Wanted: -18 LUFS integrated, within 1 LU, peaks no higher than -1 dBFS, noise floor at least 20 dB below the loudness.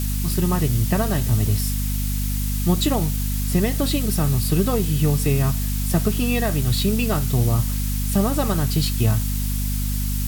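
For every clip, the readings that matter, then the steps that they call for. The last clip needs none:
hum 50 Hz; harmonics up to 250 Hz; hum level -21 dBFS; noise floor -23 dBFS; noise floor target -42 dBFS; loudness -21.5 LUFS; peak -6.5 dBFS; loudness target -18.0 LUFS
-> de-hum 50 Hz, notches 5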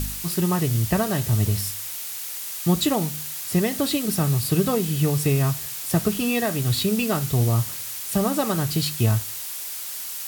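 hum none; noise floor -33 dBFS; noise floor target -43 dBFS
-> noise print and reduce 10 dB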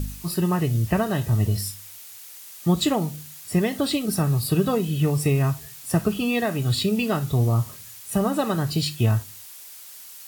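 noise floor -43 dBFS; noise floor target -44 dBFS
-> noise print and reduce 6 dB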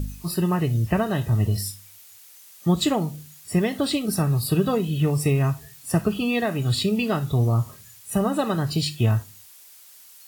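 noise floor -49 dBFS; loudness -23.5 LUFS; peak -8.5 dBFS; loudness target -18.0 LUFS
-> gain +5.5 dB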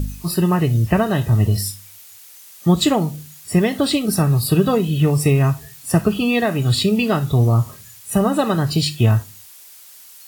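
loudness -18.0 LUFS; peak -3.0 dBFS; noise floor -43 dBFS

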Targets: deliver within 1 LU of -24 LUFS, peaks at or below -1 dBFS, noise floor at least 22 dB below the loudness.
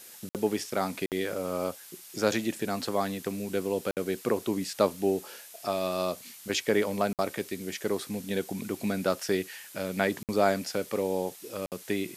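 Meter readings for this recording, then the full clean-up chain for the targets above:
dropouts 6; longest dropout 58 ms; noise floor -49 dBFS; noise floor target -53 dBFS; loudness -30.5 LUFS; peak -9.5 dBFS; loudness target -24.0 LUFS
-> interpolate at 0.29/1.06/3.91/7.13/10.23/11.66, 58 ms; denoiser 6 dB, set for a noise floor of -49 dBFS; gain +6.5 dB

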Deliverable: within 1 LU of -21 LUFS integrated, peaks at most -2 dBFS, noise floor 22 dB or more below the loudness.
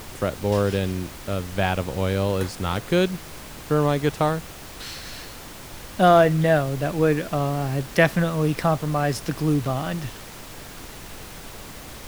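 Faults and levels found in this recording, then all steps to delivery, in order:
noise floor -40 dBFS; noise floor target -45 dBFS; loudness -22.5 LUFS; peak -2.0 dBFS; loudness target -21.0 LUFS
-> noise print and reduce 6 dB; gain +1.5 dB; limiter -2 dBFS

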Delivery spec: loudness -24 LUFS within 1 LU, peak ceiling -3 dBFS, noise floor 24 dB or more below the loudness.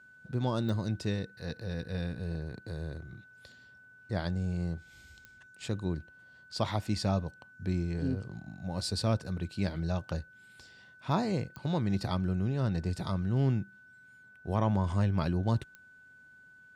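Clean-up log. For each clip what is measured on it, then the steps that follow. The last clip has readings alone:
clicks 4; steady tone 1500 Hz; tone level -54 dBFS; loudness -33.0 LUFS; peak -15.0 dBFS; loudness target -24.0 LUFS
-> de-click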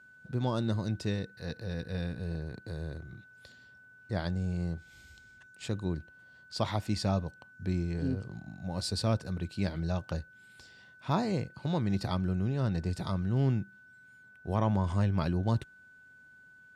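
clicks 0; steady tone 1500 Hz; tone level -54 dBFS
-> notch 1500 Hz, Q 30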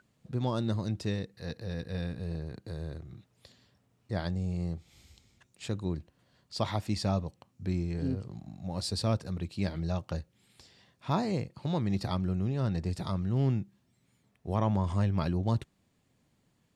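steady tone none; loudness -33.0 LUFS; peak -15.0 dBFS; loudness target -24.0 LUFS
-> gain +9 dB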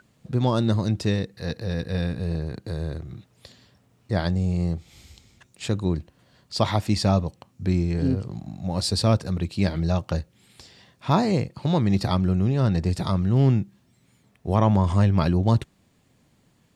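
loudness -24.0 LUFS; peak -6.0 dBFS; noise floor -63 dBFS

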